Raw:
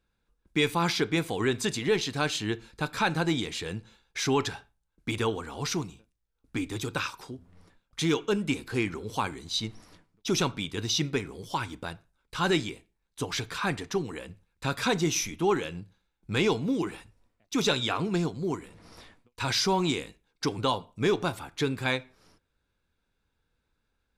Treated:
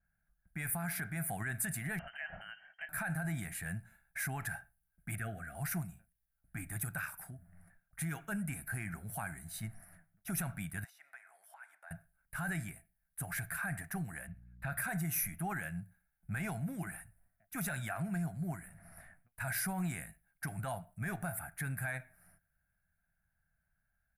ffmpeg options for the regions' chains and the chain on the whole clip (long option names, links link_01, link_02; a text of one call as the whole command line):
ffmpeg -i in.wav -filter_complex "[0:a]asettb=1/sr,asplit=3[link_01][link_02][link_03];[link_01]atrim=end=1.994[link_04];[link_02]atrim=start=1.99:end=2.89,asetpts=PTS-STARTPTS,afade=type=in:duration=0.004:curve=qsin,afade=type=out:start_time=0.896:duration=0.004:curve=qsin,lowpass=frequency=2700:width_type=q:width=0.5098,lowpass=frequency=2700:width_type=q:width=0.6013,lowpass=frequency=2700:width_type=q:width=0.9,lowpass=frequency=2700:width_type=q:width=2.563,afreqshift=-3200,acompressor=threshold=-32dB:ratio=10:attack=3.2:release=140:knee=1:detection=peak[link_05];[link_03]atrim=start=2.886[link_06];[link_04][link_05]acrossfade=duration=0.004:curve1=hsin:curve2=qsin[link_07];[link_07][link_06]acrossfade=duration=0.004:curve1=qsin:curve2=hsin,asettb=1/sr,asplit=3[link_08][link_09][link_10];[link_08]atrim=end=5.154[link_11];[link_09]atrim=start=5.15:end=5.55,asetpts=PTS-STARTPTS,afade=type=in:duration=0.004:curve=qsin,afade=type=out:start_time=0.396:duration=0.004:curve=qsin,asuperstop=centerf=950:order=8:qfactor=2.1,bass=frequency=250:gain=-1,treble=frequency=4000:gain=-8[link_12];[link_10]atrim=start=5.546[link_13];[link_11][link_12]acrossfade=duration=0.004:curve1=hsin:curve2=qsin[link_14];[link_14][link_13]acrossfade=duration=0.004:curve1=qsin:curve2=hsin,asettb=1/sr,asplit=3[link_15][link_16][link_17];[link_15]atrim=end=10.844[link_18];[link_16]atrim=start=10.84:end=11.91,asetpts=PTS-STARTPTS,afade=type=in:duration=0.004:curve=qsin,afade=type=out:start_time=1.066:duration=0.004:curve=qsin,highpass=frequency=720:width=0.5412,highpass=frequency=720:width=1.3066,aemphasis=mode=reproduction:type=50kf,acompressor=threshold=-49dB:ratio=3:attack=3.2:release=140:knee=1:detection=peak[link_19];[link_17]atrim=start=11.906[link_20];[link_18][link_19]acrossfade=duration=0.004:curve1=hsin:curve2=qsin[link_21];[link_21][link_20]acrossfade=duration=0.004:curve1=qsin:curve2=hsin,asettb=1/sr,asplit=3[link_22][link_23][link_24];[link_22]atrim=end=14.274[link_25];[link_23]atrim=start=14.27:end=14.78,asetpts=PTS-STARTPTS,afade=type=in:duration=0.004:curve=qsin,afade=type=out:start_time=0.506:duration=0.004:curve=qsin,aeval=exprs='val(0)+0.00282*(sin(2*PI*60*n/s)+sin(2*PI*2*60*n/s)/2+sin(2*PI*3*60*n/s)/3+sin(2*PI*4*60*n/s)/4+sin(2*PI*5*60*n/s)/5)':channel_layout=same,highshelf=frequency=5100:width_type=q:width=1.5:gain=-10[link_26];[link_24]atrim=start=14.776[link_27];[link_25][link_26]acrossfade=duration=0.004:curve1=hsin:curve2=qsin[link_28];[link_28][link_27]acrossfade=duration=0.004:curve1=qsin:curve2=hsin,firequalizer=gain_entry='entry(110,0);entry(170,4);entry(250,-12);entry(460,-23);entry(660,5);entry(1000,-13);entry(1600,7);entry(3300,-25);entry(6300,-20);entry(10000,8)':delay=0.05:min_phase=1,alimiter=level_in=2dB:limit=-24dB:level=0:latency=1:release=33,volume=-2dB,adynamicequalizer=threshold=0.00158:dfrequency=3500:dqfactor=0.7:tfrequency=3500:tqfactor=0.7:attack=5:release=100:ratio=0.375:range=4:mode=boostabove:tftype=highshelf,volume=-4dB" out.wav